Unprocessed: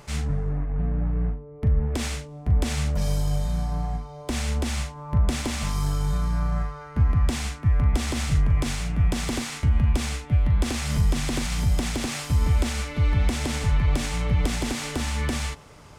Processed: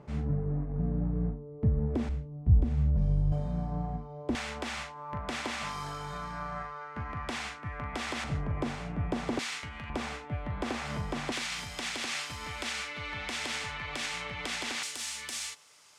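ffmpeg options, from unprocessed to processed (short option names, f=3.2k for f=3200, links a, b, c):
-af "asetnsamples=n=441:p=0,asendcmd='2.09 bandpass f 100;3.32 bandpass f 300;4.35 bandpass f 1400;8.24 bandpass f 570;9.39 bandpass f 2500;9.9 bandpass f 860;11.32 bandpass f 2500;14.83 bandpass f 7100',bandpass=f=250:t=q:w=0.61:csg=0"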